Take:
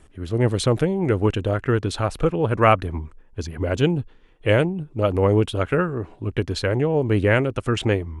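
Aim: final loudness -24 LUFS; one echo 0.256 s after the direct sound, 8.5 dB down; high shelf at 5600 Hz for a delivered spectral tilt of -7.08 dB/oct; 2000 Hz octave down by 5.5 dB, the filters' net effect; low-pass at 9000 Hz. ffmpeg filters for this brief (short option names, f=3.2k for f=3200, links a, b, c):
-af "lowpass=9k,equalizer=f=2k:t=o:g=-6.5,highshelf=f=5.6k:g=-8,aecho=1:1:256:0.376,volume=-2dB"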